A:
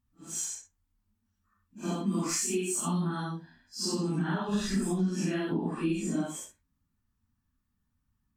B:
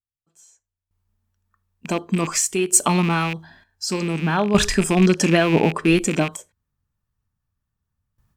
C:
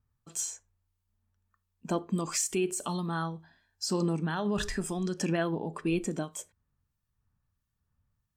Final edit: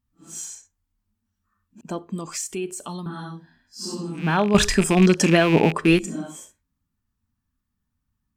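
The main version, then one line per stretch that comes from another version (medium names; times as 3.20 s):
A
1.81–3.06 s: from C
4.21–6.02 s: from B, crossfade 0.16 s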